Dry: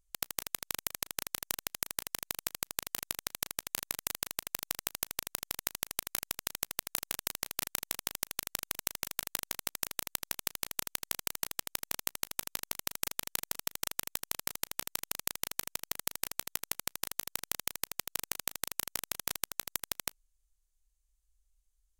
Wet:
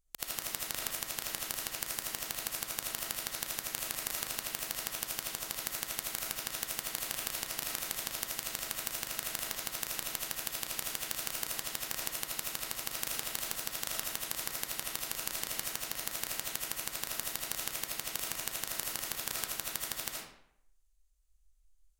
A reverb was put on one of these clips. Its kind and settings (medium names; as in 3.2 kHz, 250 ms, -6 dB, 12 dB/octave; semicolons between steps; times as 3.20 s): algorithmic reverb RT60 0.73 s, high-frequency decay 0.75×, pre-delay 35 ms, DRR -3 dB; trim -3 dB